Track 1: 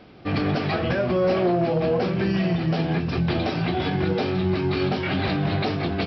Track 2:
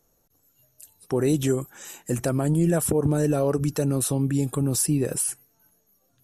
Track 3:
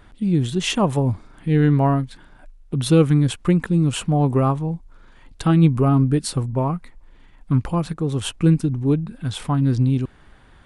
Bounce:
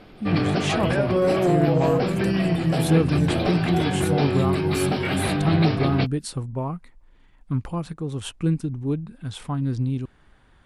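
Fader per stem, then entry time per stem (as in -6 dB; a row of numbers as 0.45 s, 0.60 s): +0.5 dB, -10.5 dB, -6.5 dB; 0.00 s, 0.00 s, 0.00 s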